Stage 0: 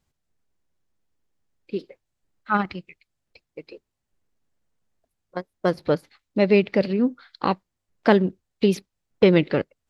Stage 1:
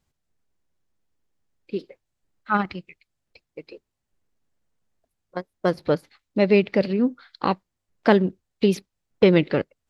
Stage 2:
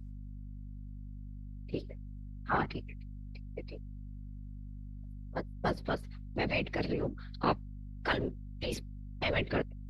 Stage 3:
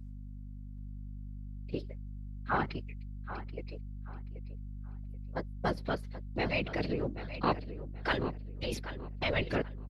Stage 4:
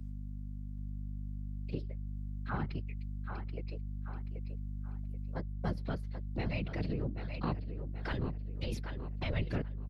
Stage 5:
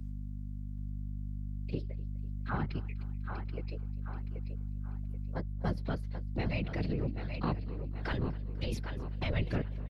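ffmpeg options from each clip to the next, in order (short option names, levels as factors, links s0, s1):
-af anull
-af "afftfilt=real='hypot(re,im)*cos(2*PI*random(0))':imag='hypot(re,im)*sin(2*PI*random(1))':win_size=512:overlap=0.75,aeval=exprs='val(0)+0.00708*(sin(2*PI*50*n/s)+sin(2*PI*2*50*n/s)/2+sin(2*PI*3*50*n/s)/3+sin(2*PI*4*50*n/s)/4+sin(2*PI*5*50*n/s)/5)':c=same,afftfilt=real='re*lt(hypot(re,im),0.282)':imag='im*lt(hypot(re,im),0.282)':win_size=1024:overlap=0.75"
-filter_complex "[0:a]asplit=2[s0][s1];[s1]adelay=781,lowpass=f=4500:p=1,volume=0.251,asplit=2[s2][s3];[s3]adelay=781,lowpass=f=4500:p=1,volume=0.28,asplit=2[s4][s5];[s5]adelay=781,lowpass=f=4500:p=1,volume=0.28[s6];[s0][s2][s4][s6]amix=inputs=4:normalize=0"
-filter_complex "[0:a]acrossover=split=210[s0][s1];[s1]acompressor=threshold=0.00251:ratio=2[s2];[s0][s2]amix=inputs=2:normalize=0,volume=1.41"
-af "aecho=1:1:249|498|747|996:0.0891|0.0508|0.029|0.0165,volume=1.26"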